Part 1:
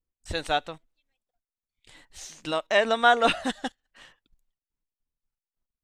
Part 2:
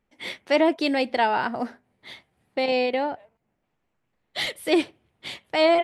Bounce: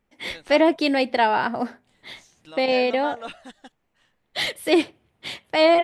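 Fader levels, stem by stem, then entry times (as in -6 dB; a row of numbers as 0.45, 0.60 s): -14.0, +2.5 dB; 0.00, 0.00 s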